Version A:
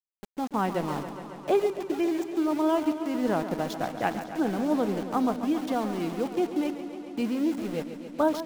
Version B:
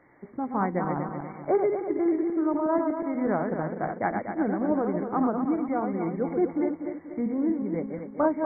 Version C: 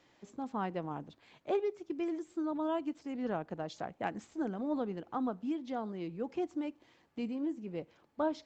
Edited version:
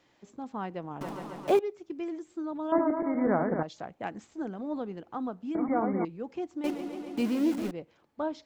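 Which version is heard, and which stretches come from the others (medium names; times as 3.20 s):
C
1.01–1.59 s: from A
2.72–3.63 s: from B
5.55–6.05 s: from B
6.64–7.71 s: from A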